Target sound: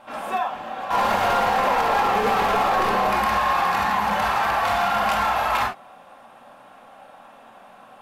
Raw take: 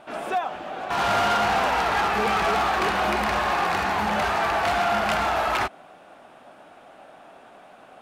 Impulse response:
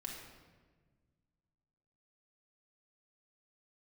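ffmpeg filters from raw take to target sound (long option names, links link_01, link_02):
-filter_complex "[0:a]asettb=1/sr,asplit=3[link_01][link_02][link_03];[link_01]atrim=end=0.934[link_04];[link_02]atrim=start=0.93:end=3.1,asetpts=PTS-STARTPTS,afade=type=in:duration=0.004:curve=qsin,afade=type=out:start_time=2.166:duration=0.004:curve=qsin,equalizer=frequency=430:width_type=o:width=1.5:gain=12.5[link_05];[link_03]atrim=start=3.096[link_06];[link_04][link_05]acrossfade=duration=0.004:curve1=hsin:curve2=qsin[link_07];[link_07][link_06]acrossfade=duration=0.004:curve1=qsin:curve2=hsin,asoftclip=type=hard:threshold=-16.5dB,equalizer=frequency=315:width_type=o:width=0.33:gain=-9,equalizer=frequency=1000:width_type=o:width=0.33:gain=8,equalizer=frequency=12500:width_type=o:width=0.33:gain=9[link_08];[1:a]atrim=start_sample=2205,atrim=end_sample=3087[link_09];[link_08][link_09]afir=irnorm=-1:irlink=0,alimiter=limit=-15.5dB:level=0:latency=1:release=30,volume=3.5dB"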